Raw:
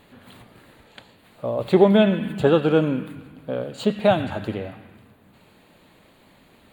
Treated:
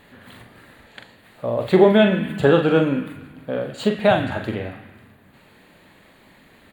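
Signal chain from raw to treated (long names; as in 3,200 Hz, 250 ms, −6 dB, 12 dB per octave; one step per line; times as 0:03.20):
parametric band 1,800 Hz +6.5 dB 0.52 octaves
double-tracking delay 43 ms −6.5 dB
level +1 dB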